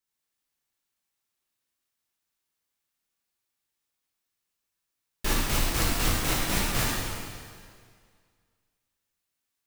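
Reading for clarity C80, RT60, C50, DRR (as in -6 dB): 0.0 dB, 2.0 s, -2.0 dB, -5.5 dB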